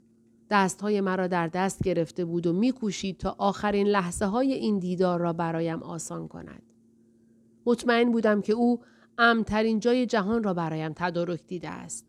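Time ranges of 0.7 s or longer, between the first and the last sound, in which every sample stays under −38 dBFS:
0:06.59–0:07.66

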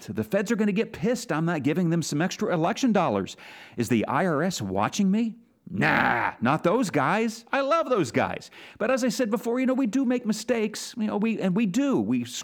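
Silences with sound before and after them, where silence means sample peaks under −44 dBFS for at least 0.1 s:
0:05.37–0:05.67

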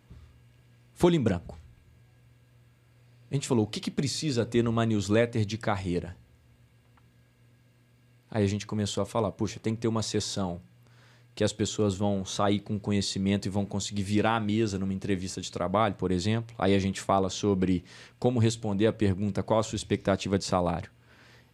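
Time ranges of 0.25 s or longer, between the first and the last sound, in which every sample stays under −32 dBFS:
0:01.50–0:03.32
0:06.09–0:08.32
0:10.56–0:11.37
0:17.79–0:18.22

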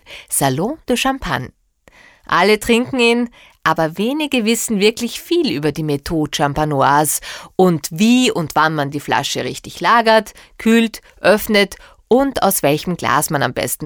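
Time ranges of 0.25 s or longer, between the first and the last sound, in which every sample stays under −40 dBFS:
0:01.49–0:01.88

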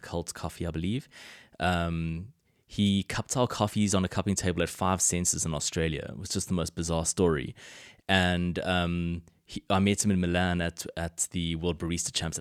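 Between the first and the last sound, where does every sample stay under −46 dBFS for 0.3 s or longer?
0:02.30–0:02.71

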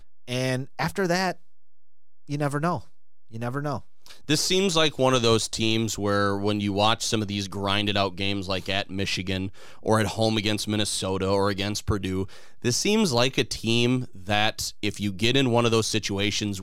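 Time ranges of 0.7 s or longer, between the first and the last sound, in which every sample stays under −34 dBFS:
0:01.32–0:02.29

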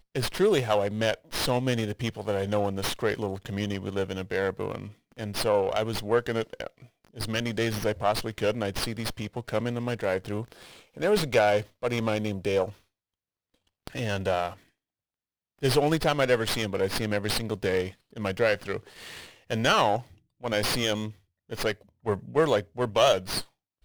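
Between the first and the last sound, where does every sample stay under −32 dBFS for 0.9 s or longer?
0:12.69–0:13.87
0:14.49–0:15.63

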